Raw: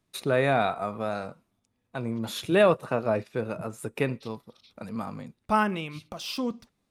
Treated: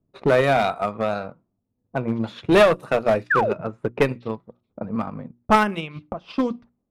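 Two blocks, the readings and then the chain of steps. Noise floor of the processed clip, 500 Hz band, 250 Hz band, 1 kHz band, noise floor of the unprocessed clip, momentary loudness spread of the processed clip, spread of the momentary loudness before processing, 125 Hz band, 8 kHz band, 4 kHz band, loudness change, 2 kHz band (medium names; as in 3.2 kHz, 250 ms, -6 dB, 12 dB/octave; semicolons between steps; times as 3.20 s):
-76 dBFS, +6.0 dB, +5.5 dB, +6.5 dB, -77 dBFS, 16 LU, 18 LU, +4.0 dB, no reading, +3.5 dB, +6.0 dB, +7.0 dB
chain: hum notches 60/120/180/240/300/360 Hz; level-controlled noise filter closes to 460 Hz, open at -23 dBFS; painted sound fall, 3.30–3.53 s, 360–1900 Hz -27 dBFS; transient shaper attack +6 dB, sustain -6 dB; one-sided clip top -20 dBFS; trim +6 dB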